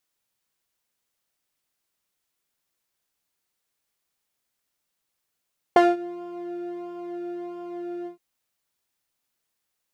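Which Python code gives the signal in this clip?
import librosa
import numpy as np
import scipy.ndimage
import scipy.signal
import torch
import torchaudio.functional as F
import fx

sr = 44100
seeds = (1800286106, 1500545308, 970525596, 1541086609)

y = fx.sub_patch_pwm(sr, seeds[0], note=65, wave2='saw', interval_st=12, detune_cents=16, level2_db=-9.0, sub_db=-27.0, noise_db=-30.0, kind='bandpass', cutoff_hz=160.0, q=1.1, env_oct=2.5, env_decay_s=0.31, env_sustain_pct=35, attack_ms=2.5, decay_s=0.2, sustain_db=-22, release_s=0.12, note_s=2.3, lfo_hz=1.5, width_pct=26, width_swing_pct=9)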